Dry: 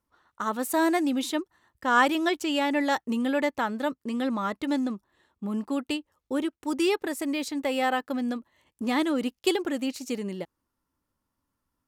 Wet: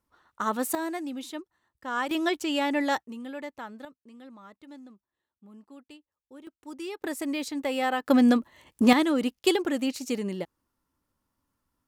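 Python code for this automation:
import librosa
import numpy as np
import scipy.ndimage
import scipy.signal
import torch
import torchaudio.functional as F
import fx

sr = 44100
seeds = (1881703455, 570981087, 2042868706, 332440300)

y = fx.gain(x, sr, db=fx.steps((0.0, 1.0), (0.75, -9.0), (2.11, -1.0), (3.03, -12.0), (3.85, -20.0), (6.47, -12.5), (7.04, -1.5), (8.06, 10.0), (8.93, 1.5)))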